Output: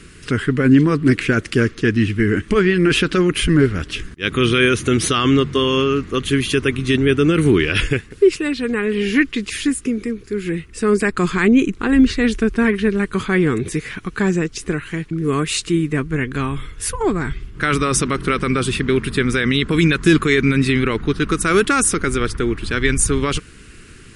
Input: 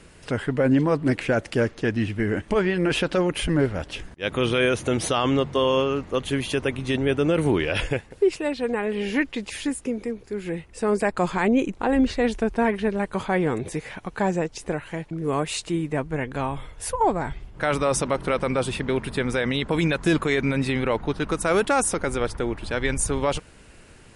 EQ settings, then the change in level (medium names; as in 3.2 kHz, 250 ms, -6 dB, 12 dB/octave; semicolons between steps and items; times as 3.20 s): high-order bell 700 Hz -15 dB 1.1 oct; +8.0 dB